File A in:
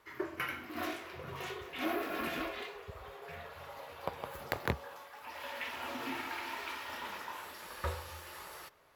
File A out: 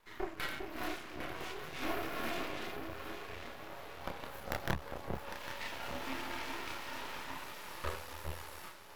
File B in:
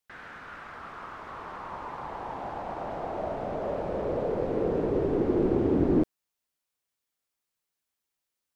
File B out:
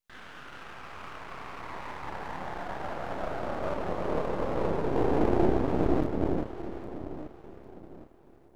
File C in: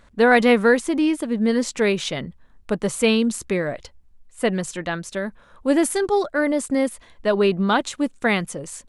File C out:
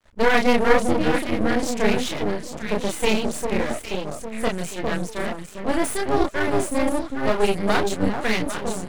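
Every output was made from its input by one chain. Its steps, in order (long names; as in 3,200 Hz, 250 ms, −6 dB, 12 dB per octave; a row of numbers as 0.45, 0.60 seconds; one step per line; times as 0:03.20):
delay that swaps between a low-pass and a high-pass 402 ms, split 890 Hz, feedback 59%, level −3.5 dB
multi-voice chorus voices 2, 0.48 Hz, delay 30 ms, depth 4 ms
half-wave rectification
level +5 dB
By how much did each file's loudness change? −1.5, −2.0, −2.0 LU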